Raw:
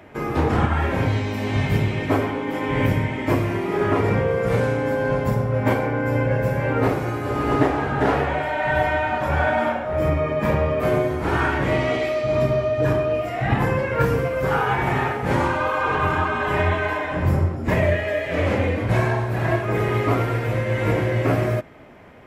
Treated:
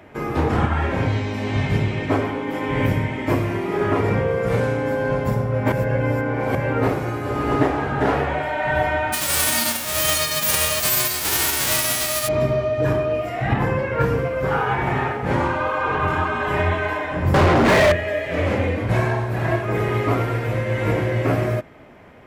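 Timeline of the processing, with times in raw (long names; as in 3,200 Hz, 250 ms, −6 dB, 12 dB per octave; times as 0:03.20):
0:00.69–0:02.25: low-pass filter 8,900 Hz
0:05.72–0:06.55: reverse
0:09.12–0:12.27: spectral envelope flattened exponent 0.1
0:13.53–0:16.08: high-shelf EQ 6,100 Hz −8 dB
0:17.34–0:17.92: mid-hump overdrive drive 40 dB, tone 2,100 Hz, clips at −7.5 dBFS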